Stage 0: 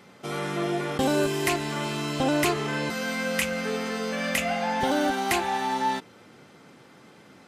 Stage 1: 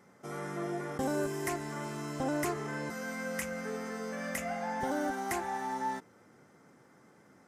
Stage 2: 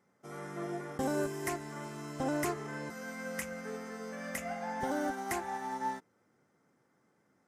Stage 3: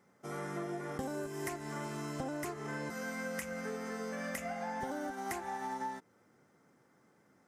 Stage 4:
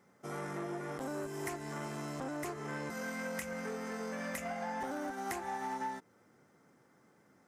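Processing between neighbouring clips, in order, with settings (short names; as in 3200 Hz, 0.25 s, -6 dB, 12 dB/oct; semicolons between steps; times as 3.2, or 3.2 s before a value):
band shelf 3300 Hz -11 dB 1.1 oct; gain -8.5 dB
upward expander 1.5:1, over -54 dBFS
compressor 10:1, threshold -40 dBFS, peak gain reduction 12 dB; gain +4.5 dB
core saturation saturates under 1000 Hz; gain +1.5 dB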